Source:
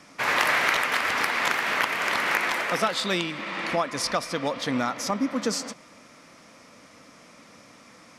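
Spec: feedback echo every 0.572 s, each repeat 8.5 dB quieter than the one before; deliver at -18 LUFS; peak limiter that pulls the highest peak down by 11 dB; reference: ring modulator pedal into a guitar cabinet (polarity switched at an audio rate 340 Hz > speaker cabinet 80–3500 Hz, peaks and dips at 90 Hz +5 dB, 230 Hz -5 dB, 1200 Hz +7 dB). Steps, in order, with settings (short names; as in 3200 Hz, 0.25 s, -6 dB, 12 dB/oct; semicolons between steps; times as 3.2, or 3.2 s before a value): limiter -18.5 dBFS; feedback echo 0.572 s, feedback 38%, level -8.5 dB; polarity switched at an audio rate 340 Hz; speaker cabinet 80–3500 Hz, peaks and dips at 90 Hz +5 dB, 230 Hz -5 dB, 1200 Hz +7 dB; gain +9 dB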